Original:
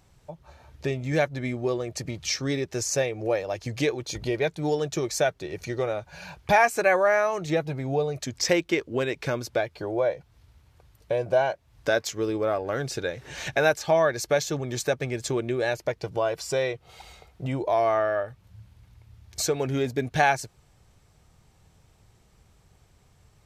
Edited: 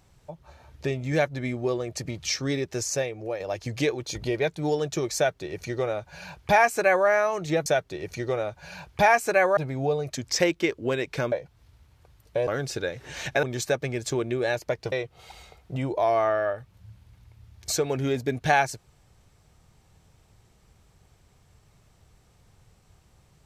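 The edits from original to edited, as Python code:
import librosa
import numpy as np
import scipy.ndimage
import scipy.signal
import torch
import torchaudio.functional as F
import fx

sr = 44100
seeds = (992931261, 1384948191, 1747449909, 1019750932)

y = fx.edit(x, sr, fx.fade_out_to(start_s=2.72, length_s=0.68, floor_db=-7.5),
    fx.duplicate(start_s=5.16, length_s=1.91, to_s=7.66),
    fx.cut(start_s=9.41, length_s=0.66),
    fx.cut(start_s=11.22, length_s=1.46),
    fx.cut(start_s=13.64, length_s=0.97),
    fx.cut(start_s=16.1, length_s=0.52), tone=tone)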